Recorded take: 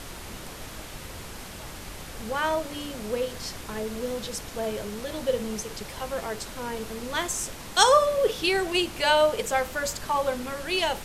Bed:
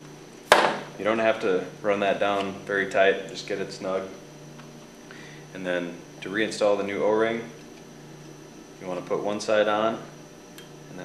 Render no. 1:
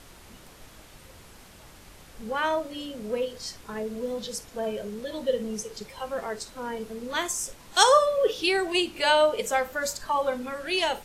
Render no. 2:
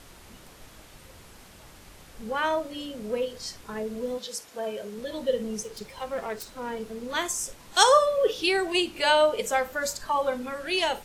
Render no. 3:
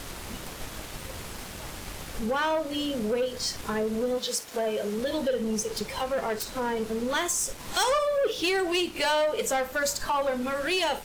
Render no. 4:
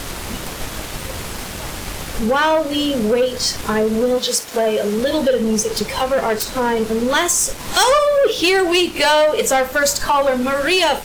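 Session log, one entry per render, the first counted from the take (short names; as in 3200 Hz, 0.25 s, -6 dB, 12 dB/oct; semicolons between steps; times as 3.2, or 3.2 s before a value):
noise print and reduce 10 dB
4.17–4.96 HPF 700 Hz -> 250 Hz 6 dB/oct; 5.63–7.09 self-modulated delay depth 0.086 ms
compressor 2:1, threshold -40 dBFS, peak gain reduction 14.5 dB; sample leveller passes 3
gain +11 dB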